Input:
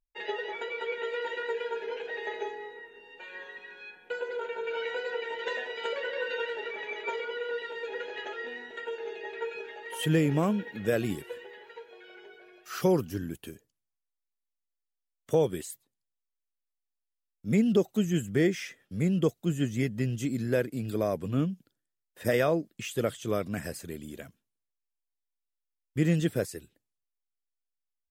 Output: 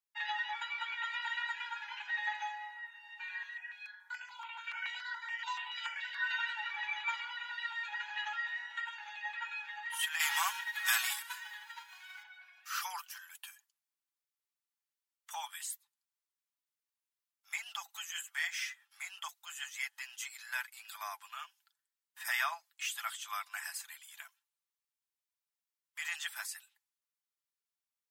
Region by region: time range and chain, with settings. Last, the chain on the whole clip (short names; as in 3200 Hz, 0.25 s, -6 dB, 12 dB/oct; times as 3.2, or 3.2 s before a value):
3.43–6.24 doubler 22 ms -7 dB + step phaser 7 Hz 200–3900 Hz
10.19–12.22 spectral whitening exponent 0.6 + HPF 440 Hz + comb 5.3 ms, depth 54%
whole clip: steep high-pass 830 Hz 72 dB/oct; comb 5.9 ms, depth 49%